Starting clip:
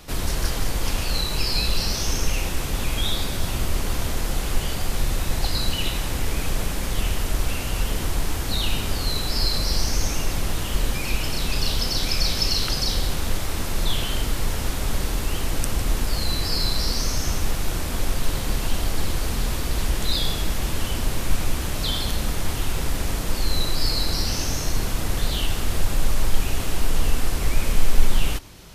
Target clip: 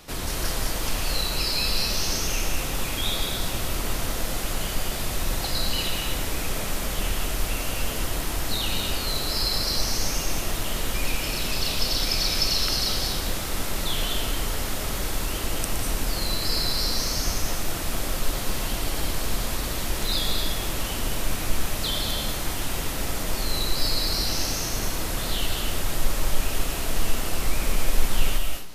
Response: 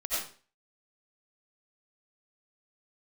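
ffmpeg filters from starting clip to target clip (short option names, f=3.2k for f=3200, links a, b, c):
-filter_complex "[0:a]lowshelf=f=140:g=-6.5,asplit=2[a][b];[1:a]atrim=start_sample=2205,highshelf=f=12k:g=11,adelay=116[c];[b][c]afir=irnorm=-1:irlink=0,volume=-10dB[d];[a][d]amix=inputs=2:normalize=0,volume=-1.5dB"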